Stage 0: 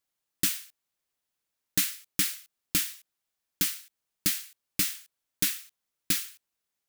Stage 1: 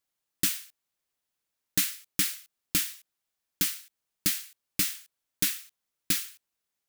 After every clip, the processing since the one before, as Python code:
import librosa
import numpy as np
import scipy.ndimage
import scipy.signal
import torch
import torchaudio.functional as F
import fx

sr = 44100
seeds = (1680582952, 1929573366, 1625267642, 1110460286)

y = x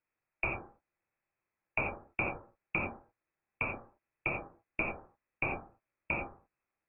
y = fx.rev_gated(x, sr, seeds[0], gate_ms=120, shape='flat', drr_db=0.0)
y = fx.freq_invert(y, sr, carrier_hz=2600)